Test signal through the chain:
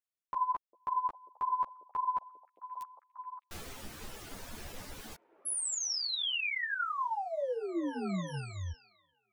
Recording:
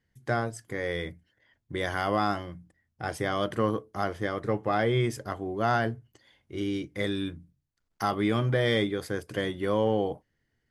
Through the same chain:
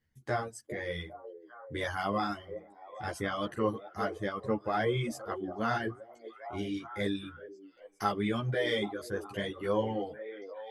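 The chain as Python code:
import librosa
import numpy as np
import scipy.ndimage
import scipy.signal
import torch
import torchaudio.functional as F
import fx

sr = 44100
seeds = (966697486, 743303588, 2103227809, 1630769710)

p1 = x + fx.echo_stepped(x, sr, ms=402, hz=420.0, octaves=0.7, feedback_pct=70, wet_db=-7.5, dry=0)
p2 = fx.dereverb_blind(p1, sr, rt60_s=1.2)
y = fx.ensemble(p2, sr)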